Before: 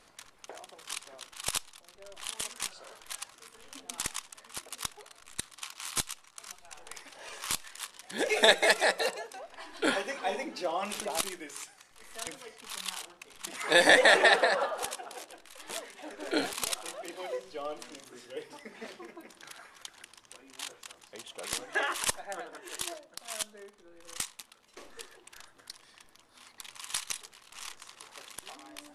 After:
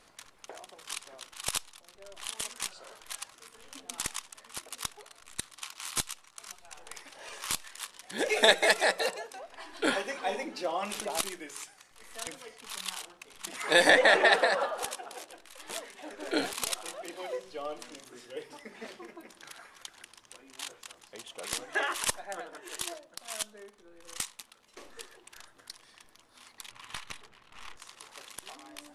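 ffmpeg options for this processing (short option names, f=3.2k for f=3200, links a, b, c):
-filter_complex "[0:a]asettb=1/sr,asplit=3[a][b][c];[a]atrim=end=13.904[d];[b]atrim=start=13.9:end=14.32,asetpts=PTS-STARTPTS,afade=t=in:d=0.004:c=qsin,afade=t=out:st=0.416:d=0.004:c=qsin,lowpass=f=3.8k:p=1[e];[c]atrim=start=14.316[f];[d][e]acrossfade=d=0.004:c1=hsin:c2=qsin[g];[g][f]acrossfade=d=0.004:c1=qsin:c2=hsin,asettb=1/sr,asplit=3[h][i][j];[h]atrim=end=26.714[k];[i]atrim=start=26.71:end=27.76,asetpts=PTS-STARTPTS,afade=t=in:d=0.004:c=qsin,afade=t=out:st=1.046:d=0.004:c=qsin,bass=f=250:g=7,treble=f=4k:g=-15[l];[j]atrim=start=27.756[m];[k][l]acrossfade=d=0.004:c1=hsin:c2=qsin[n];[n][m]acrossfade=d=0.004:c1=qsin:c2=hsin"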